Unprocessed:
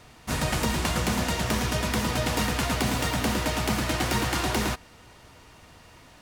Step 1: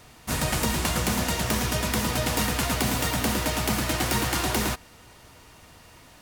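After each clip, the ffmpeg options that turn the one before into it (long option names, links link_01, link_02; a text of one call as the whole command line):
ffmpeg -i in.wav -af "highshelf=frequency=9200:gain=9.5" out.wav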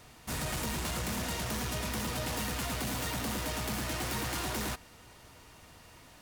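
ffmpeg -i in.wav -af "asoftclip=type=tanh:threshold=-27dB,volume=-4dB" out.wav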